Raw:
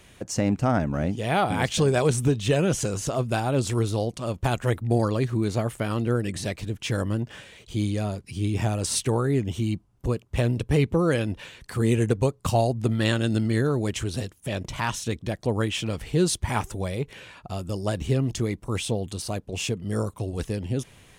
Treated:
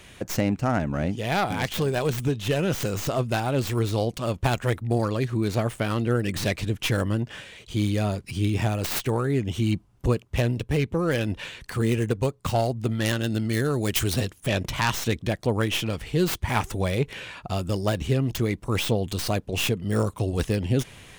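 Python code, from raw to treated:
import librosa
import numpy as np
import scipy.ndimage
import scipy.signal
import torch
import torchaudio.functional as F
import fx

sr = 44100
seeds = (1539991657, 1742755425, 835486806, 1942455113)

y = fx.tracing_dist(x, sr, depth_ms=0.27)
y = fx.peak_eq(y, sr, hz=2500.0, db=3.0, octaves=2.1)
y = fx.rider(y, sr, range_db=5, speed_s=0.5)
y = fx.high_shelf(y, sr, hz=5000.0, db=10.0, at=(13.49, 14.14))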